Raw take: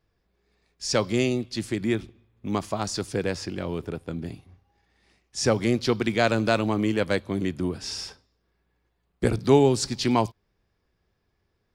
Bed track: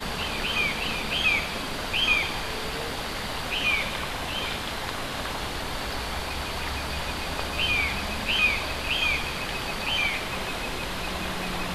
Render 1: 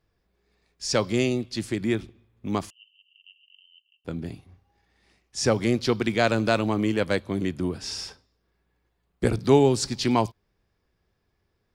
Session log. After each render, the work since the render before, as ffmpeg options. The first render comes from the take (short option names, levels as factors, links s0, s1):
-filter_complex "[0:a]asettb=1/sr,asplit=3[s0][s1][s2];[s0]atrim=end=2.704[s3];[s1]atrim=start=2.7:end=4.05,asetpts=PTS-STARTPTS,afade=t=in:d=0.004:c=qsin,afade=t=out:st=1.346:d=0.004:c=qsin,asuperpass=centerf=2900:order=12:qfactor=7.2[s4];[s2]atrim=start=4.046[s5];[s3][s4]acrossfade=d=0.004:c1=hsin:c2=qsin[s6];[s6][s5]acrossfade=d=0.004:c1=qsin:c2=hsin"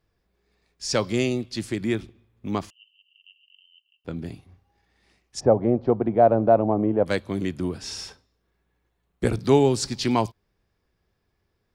-filter_complex "[0:a]asettb=1/sr,asplit=3[s0][s1][s2];[s0]atrim=end=2.504[s3];[s1]atrim=start=2.5:end=4.17,asetpts=PTS-STARTPTS,afade=t=in:d=0.004:c=qsin,afade=t=out:st=1.666:d=0.004:c=qsin,equalizer=f=9800:t=o:w=1.1:g=-7.5[s4];[s2]atrim=start=4.166[s5];[s3][s4]acrossfade=d=0.004:c1=hsin:c2=qsin[s6];[s6][s5]acrossfade=d=0.004:c1=qsin:c2=hsin,asplit=3[s7][s8][s9];[s7]afade=t=out:st=5.39:d=0.02[s10];[s8]lowpass=f=710:t=q:w=2.7,afade=t=in:st=5.39:d=0.02,afade=t=out:st=7.05:d=0.02[s11];[s9]afade=t=in:st=7.05:d=0.02[s12];[s10][s11][s12]amix=inputs=3:normalize=0,asettb=1/sr,asplit=3[s13][s14][s15];[s13]atrim=end=7.834[s16];[s14]atrim=start=7.83:end=9.39,asetpts=PTS-STARTPTS,afade=t=in:d=0.004:c=qsin,afade=t=out:st=1.556:d=0.004:c=qsin,bandreject=f=4800:w=12[s17];[s15]atrim=start=9.386[s18];[s16][s17]acrossfade=d=0.004:c1=hsin:c2=qsin[s19];[s19][s18]acrossfade=d=0.004:c1=qsin:c2=hsin"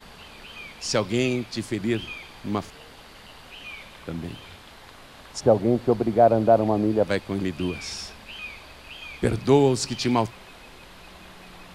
-filter_complex "[1:a]volume=0.178[s0];[0:a][s0]amix=inputs=2:normalize=0"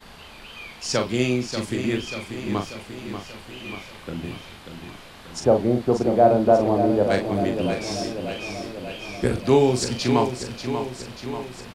-filter_complex "[0:a]asplit=2[s0][s1];[s1]adelay=40,volume=0.501[s2];[s0][s2]amix=inputs=2:normalize=0,aecho=1:1:588|1176|1764|2352|2940|3528|4116|4704:0.376|0.226|0.135|0.0812|0.0487|0.0292|0.0175|0.0105"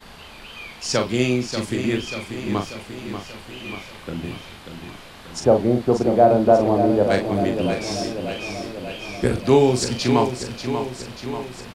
-af "volume=1.26,alimiter=limit=0.708:level=0:latency=1"